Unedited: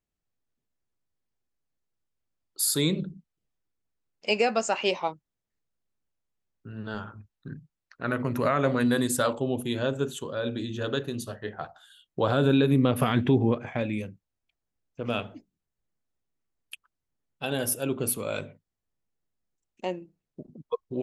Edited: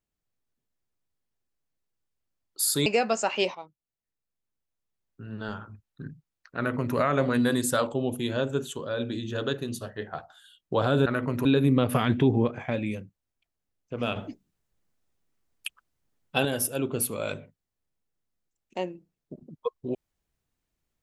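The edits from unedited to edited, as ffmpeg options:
ffmpeg -i in.wav -filter_complex "[0:a]asplit=7[link_01][link_02][link_03][link_04][link_05][link_06][link_07];[link_01]atrim=end=2.862[link_08];[link_02]atrim=start=4.318:end=5.01,asetpts=PTS-STARTPTS,afade=type=out:start_time=0.688:duration=0.004:curve=hsin:silence=0.199526[link_09];[link_03]atrim=start=5.01:end=12.522,asetpts=PTS-STARTPTS,afade=type=in:duration=1.73:silence=0.199526[link_10];[link_04]atrim=start=8.028:end=8.422[link_11];[link_05]atrim=start=12.518:end=15.232[link_12];[link_06]atrim=start=15.228:end=17.522,asetpts=PTS-STARTPTS,volume=7dB[link_13];[link_07]atrim=start=17.518[link_14];[link_09][link_10]concat=n=2:v=0:a=1[link_15];[link_08][link_15]acrossfade=duration=0.004:curve1=hsin:curve2=hsin[link_16];[link_16][link_11]acrossfade=duration=0.004:curve1=hsin:curve2=hsin[link_17];[link_17][link_12]acrossfade=duration=0.004:curve1=hsin:curve2=hsin[link_18];[link_18][link_13]acrossfade=duration=0.004:curve1=hsin:curve2=hsin[link_19];[link_19][link_14]acrossfade=duration=0.004:curve1=hsin:curve2=hsin" out.wav

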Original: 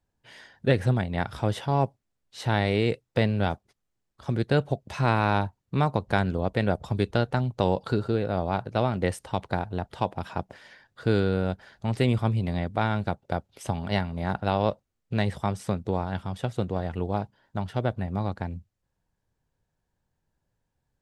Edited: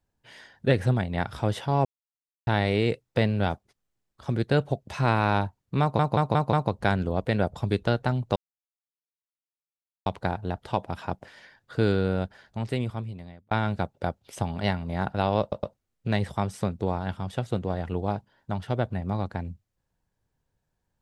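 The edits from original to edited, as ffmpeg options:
ffmpeg -i in.wav -filter_complex "[0:a]asplit=12[link_01][link_02][link_03][link_04][link_05][link_06][link_07][link_08][link_09][link_10][link_11][link_12];[link_01]atrim=end=1.85,asetpts=PTS-STARTPTS,afade=type=out:start_time=1.846:duration=0.004:curve=hsin[link_13];[link_02]atrim=start=1.85:end=2.47,asetpts=PTS-STARTPTS,volume=0[link_14];[link_03]atrim=start=2.47:end=5.992,asetpts=PTS-STARTPTS,afade=type=in:duration=0.004:curve=hsin[link_15];[link_04]atrim=start=5.808:end=5.992[link_16];[link_05]atrim=start=5.808:end=5.992[link_17];[link_06]atrim=start=5.808:end=5.992[link_18];[link_07]atrim=start=5.808:end=7.64,asetpts=PTS-STARTPTS,afade=type=out:start_time=1.828:duration=0.004:curve=hsin[link_19];[link_08]atrim=start=7.64:end=9.34,asetpts=PTS-STARTPTS,volume=0[link_20];[link_09]atrim=start=9.34:end=12.79,asetpts=PTS-STARTPTS,afade=type=in:duration=0.004:curve=hsin,afade=type=out:start_time=2.1:duration=1.35[link_21];[link_10]atrim=start=12.79:end=14.802,asetpts=PTS-STARTPTS,afade=type=in:duration=0.004:curve=hsin[link_22];[link_11]atrim=start=14.688:end=14.802[link_23];[link_12]atrim=start=14.688[link_24];[link_13][link_14][link_15]concat=n=3:v=0:a=1[link_25];[link_25][link_16]acrossfade=duration=0.004:curve1=hsin:curve2=hsin[link_26];[link_26][link_17]acrossfade=duration=0.004:curve1=hsin:curve2=hsin[link_27];[link_27][link_18]acrossfade=duration=0.004:curve1=hsin:curve2=hsin[link_28];[link_19][link_20][link_21][link_22]concat=n=4:v=0:a=1[link_29];[link_28][link_29]acrossfade=duration=0.004:curve1=hsin:curve2=hsin[link_30];[link_30][link_23]acrossfade=duration=0.004:curve1=hsin:curve2=hsin[link_31];[link_31][link_24]acrossfade=duration=0.004:curve1=hsin:curve2=hsin" out.wav

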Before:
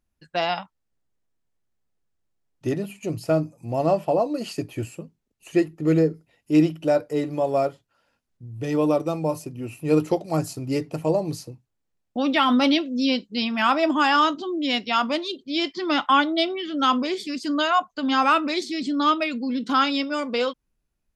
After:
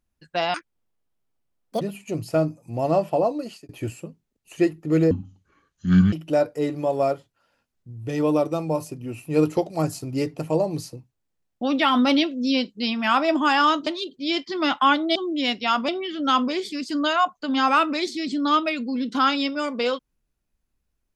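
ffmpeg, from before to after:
ffmpeg -i in.wav -filter_complex "[0:a]asplit=9[link_01][link_02][link_03][link_04][link_05][link_06][link_07][link_08][link_09];[link_01]atrim=end=0.544[link_10];[link_02]atrim=start=0.54:end=2.76,asetpts=PTS-STARTPTS,asetrate=77175,aresample=44100[link_11];[link_03]atrim=start=2.756:end=4.64,asetpts=PTS-STARTPTS,afade=type=out:start_time=1.494:duration=0.39[link_12];[link_04]atrim=start=4.64:end=6.064,asetpts=PTS-STARTPTS,afade=type=in:duration=0.004:curve=hsin[link_13];[link_05]atrim=start=6.06:end=6.67,asetpts=PTS-STARTPTS,asetrate=26460,aresample=44100[link_14];[link_06]atrim=start=6.666:end=14.412[link_15];[link_07]atrim=start=15.138:end=16.432[link_16];[link_08]atrim=start=14.408:end=15.142[link_17];[link_09]atrim=start=16.428[link_18];[link_10][link_11]acrossfade=duration=0.004:curve1=hsin:curve2=hsin[link_19];[link_12][link_13]concat=n=2:v=0:a=1[link_20];[link_19][link_20]acrossfade=duration=0.004:curve1=hsin:curve2=hsin[link_21];[link_21][link_14]acrossfade=duration=0.004:curve1=hsin:curve2=hsin[link_22];[link_22][link_15]acrossfade=duration=0.004:curve1=hsin:curve2=hsin[link_23];[link_23][link_16]acrossfade=duration=0.004:curve1=hsin:curve2=hsin[link_24];[link_24][link_17]acrossfade=duration=0.004:curve1=hsin:curve2=hsin[link_25];[link_25][link_18]acrossfade=duration=0.004:curve1=hsin:curve2=hsin" out.wav

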